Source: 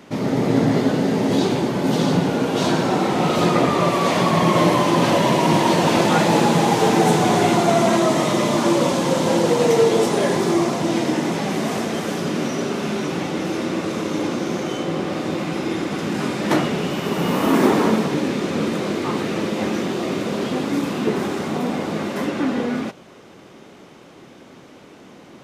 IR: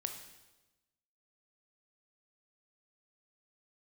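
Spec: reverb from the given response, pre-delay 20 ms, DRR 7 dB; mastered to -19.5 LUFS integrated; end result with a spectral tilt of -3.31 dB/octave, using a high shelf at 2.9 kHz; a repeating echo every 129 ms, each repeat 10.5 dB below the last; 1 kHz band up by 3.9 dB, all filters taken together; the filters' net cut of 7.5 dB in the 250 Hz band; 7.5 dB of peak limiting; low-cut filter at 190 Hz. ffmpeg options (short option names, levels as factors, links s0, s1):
-filter_complex "[0:a]highpass=190,equalizer=f=250:t=o:g=-9,equalizer=f=1000:t=o:g=5,highshelf=f=2900:g=3.5,alimiter=limit=0.282:level=0:latency=1,aecho=1:1:129|258|387:0.299|0.0896|0.0269,asplit=2[s0][s1];[1:a]atrim=start_sample=2205,adelay=20[s2];[s1][s2]afir=irnorm=-1:irlink=0,volume=0.473[s3];[s0][s3]amix=inputs=2:normalize=0,volume=1.19"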